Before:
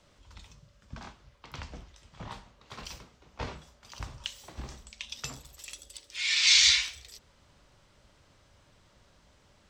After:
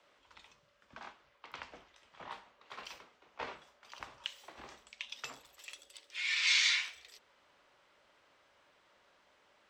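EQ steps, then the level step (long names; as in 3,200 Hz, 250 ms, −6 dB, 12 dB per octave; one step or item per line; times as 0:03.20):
spectral tilt +2 dB per octave
dynamic equaliser 3,500 Hz, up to −4 dB, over −33 dBFS, Q 0.81
three-way crossover with the lows and the highs turned down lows −16 dB, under 280 Hz, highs −16 dB, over 3,100 Hz
−1.5 dB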